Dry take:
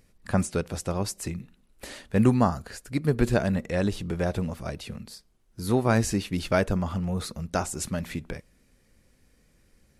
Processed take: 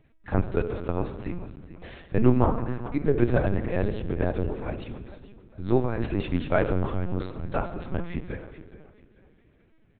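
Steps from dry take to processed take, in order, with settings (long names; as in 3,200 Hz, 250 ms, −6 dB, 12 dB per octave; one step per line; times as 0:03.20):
dynamic equaliser 370 Hz, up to +4 dB, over −40 dBFS, Q 3.4
0:05.82–0:06.35: compressor whose output falls as the input rises −24 dBFS, ratio −0.5
high-frequency loss of the air 200 metres
repeating echo 433 ms, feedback 34%, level −15 dB
on a send at −8 dB: convolution reverb RT60 1.5 s, pre-delay 3 ms
on the sum: linear-prediction vocoder at 8 kHz pitch kept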